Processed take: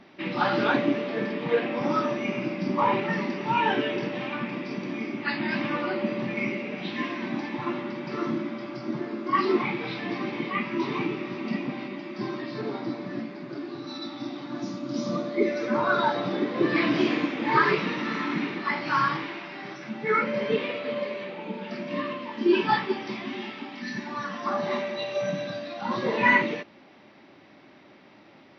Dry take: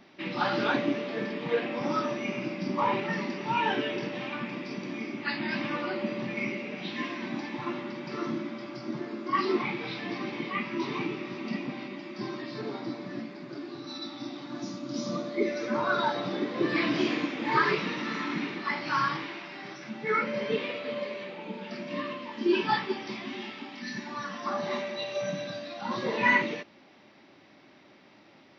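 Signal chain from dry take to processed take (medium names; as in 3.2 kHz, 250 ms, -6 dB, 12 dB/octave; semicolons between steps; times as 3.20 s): treble shelf 5.6 kHz -11 dB; trim +4 dB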